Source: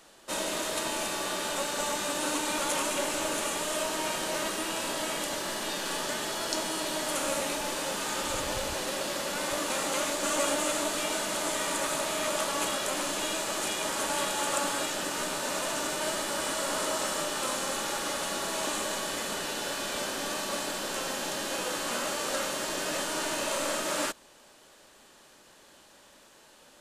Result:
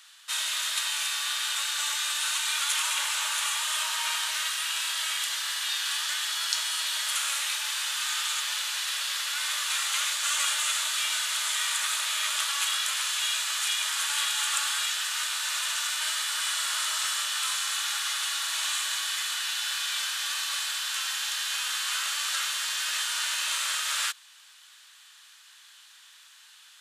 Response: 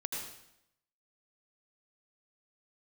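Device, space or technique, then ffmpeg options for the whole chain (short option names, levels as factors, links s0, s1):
headphones lying on a table: -filter_complex "[0:a]asettb=1/sr,asplit=3[s0][s1][s2];[s0]atrim=end=2.834[s3];[s1]atrim=start=2.83:end=4.31,asetpts=PTS-STARTPTS,afade=t=in:d=0.004:c=qsin,afade=t=out:st=1.476:d=0.004:c=qsin,equalizer=f=920:t=o:w=0.72:g=6.5[s4];[s2]atrim=start=4.306[s5];[s3][s4]acrossfade=d=0.004:c1=hsin:c2=qsin[s6];[s6][s5]acrossfade=d=0.004:c1=qsin:c2=hsin,highpass=f=1300:w=0.5412,highpass=f=1300:w=1.3066,equalizer=f=3500:t=o:w=0.57:g=5.5,volume=1.5"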